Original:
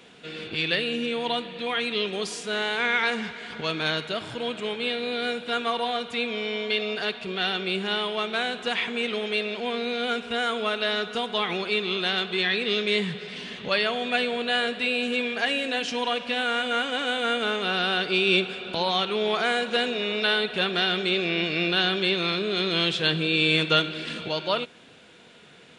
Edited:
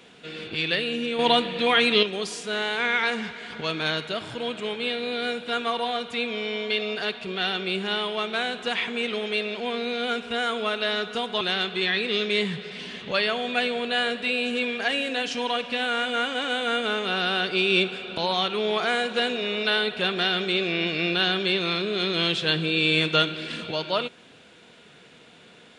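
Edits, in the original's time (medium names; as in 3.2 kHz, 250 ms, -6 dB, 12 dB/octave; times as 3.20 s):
1.19–2.03 s: gain +7.5 dB
11.41–11.98 s: delete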